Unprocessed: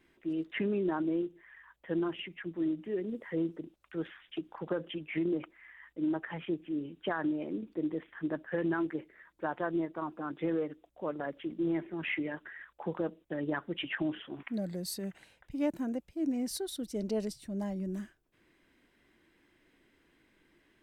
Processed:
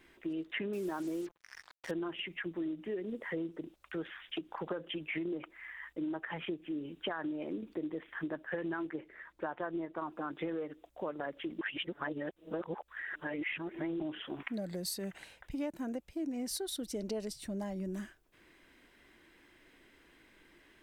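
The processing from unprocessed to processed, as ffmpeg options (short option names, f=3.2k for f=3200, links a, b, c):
-filter_complex "[0:a]asettb=1/sr,asplit=3[a][b][c];[a]atrim=end=0.734[d];[b]atrim=start=0.73:end=1.91,asetpts=PTS-STARTPTS,afade=t=in:d=0.004:c=qsin,afade=t=out:st=1.176:d=0.004:c=qsin,acrusher=bits=7:mix=0:aa=0.5[e];[c]atrim=start=1.906[f];[d][e]acrossfade=d=0.004:c1=hsin:c2=qsin[g];[g][f]acrossfade=d=0.004:c1=qsin:c2=hsin,asettb=1/sr,asplit=3[h][i][j];[h]atrim=end=8.894[k];[i]atrim=start=8.89:end=9.98,asetpts=PTS-STARTPTS,afade=t=in:d=0.004:c=qsin,afade=t=out:st=1.086:d=0.004:c=qsin,highshelf=f=5.5k:g=-9.5[l];[j]atrim=start=9.976[m];[k][l]acrossfade=d=0.004:c1=hsin:c2=qsin[n];[n][m]acrossfade=d=0.004:c1=qsin:c2=hsin,asplit=3[o][p][q];[o]atrim=end=11.612[r];[p]atrim=start=11.608:end=14.002,asetpts=PTS-STARTPTS,areverse[s];[q]atrim=start=13.998[t];[r][s]acrossfade=d=0.004:c1=hsin:c2=hsin[u];[u][t]acrossfade=d=0.004:c1=hsin:c2=hsin,equalizer=f=160:w=0.5:g=-5.5,acompressor=threshold=-43dB:ratio=4,volume=7dB"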